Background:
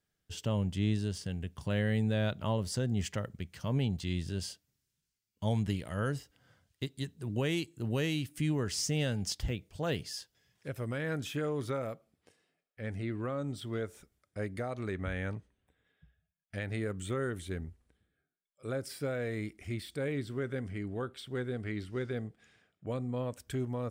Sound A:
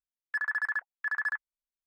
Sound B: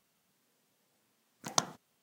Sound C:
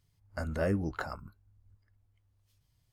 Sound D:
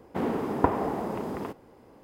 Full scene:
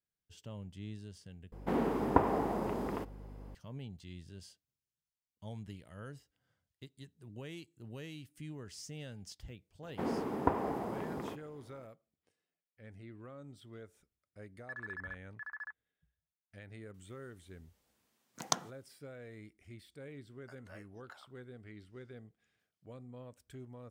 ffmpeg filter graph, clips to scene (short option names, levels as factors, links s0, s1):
-filter_complex "[4:a]asplit=2[s0][s1];[0:a]volume=0.188[s2];[s0]aeval=exprs='val(0)+0.00631*(sin(2*PI*50*n/s)+sin(2*PI*2*50*n/s)/2+sin(2*PI*3*50*n/s)/3+sin(2*PI*4*50*n/s)/4+sin(2*PI*5*50*n/s)/5)':c=same[s3];[1:a]lowpass=f=1900:p=1[s4];[3:a]highpass=910[s5];[s2]asplit=2[s6][s7];[s6]atrim=end=1.524[s8];[s3]atrim=end=2.03,asetpts=PTS-STARTPTS,volume=0.668[s9];[s7]atrim=start=3.546[s10];[s1]atrim=end=2.03,asetpts=PTS-STARTPTS,volume=0.447,afade=t=in:d=0.004:c=hsin,afade=t=out:st=2.026:d=0.004:c=hsin,adelay=9830[s11];[s4]atrim=end=1.86,asetpts=PTS-STARTPTS,volume=0.266,afade=t=in:d=0.004:c=hsin,afade=t=out:st=1.856:d=0.004:c=hsin,adelay=14350[s12];[2:a]atrim=end=2.02,asetpts=PTS-STARTPTS,volume=0.708,afade=t=in:d=0.004:c=hsin,afade=t=out:st=2.016:d=0.004:c=hsin,adelay=16940[s13];[s5]atrim=end=2.92,asetpts=PTS-STARTPTS,volume=0.168,afade=t=in:d=0.004:c=hsin,afade=t=out:st=2.916:d=0.004:c=hsin,adelay=20110[s14];[s8][s9]acrossfade=d=0.004:c1=hsin:c2=hsin[s15];[s15][s10]acrossfade=d=0.004:c1=hsin:c2=hsin[s16];[s16][s11][s12][s13][s14]amix=inputs=5:normalize=0"